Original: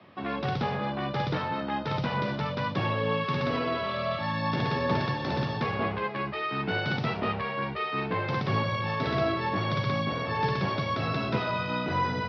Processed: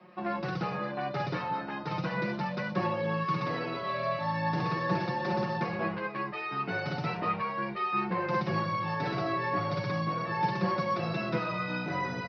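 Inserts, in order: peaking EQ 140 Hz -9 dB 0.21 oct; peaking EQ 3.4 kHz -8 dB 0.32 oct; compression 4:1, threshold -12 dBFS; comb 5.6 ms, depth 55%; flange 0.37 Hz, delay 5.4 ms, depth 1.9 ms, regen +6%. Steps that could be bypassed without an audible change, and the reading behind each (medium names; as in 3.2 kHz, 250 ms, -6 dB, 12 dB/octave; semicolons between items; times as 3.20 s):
compression, threshold -12 dBFS: peak at its input -15.5 dBFS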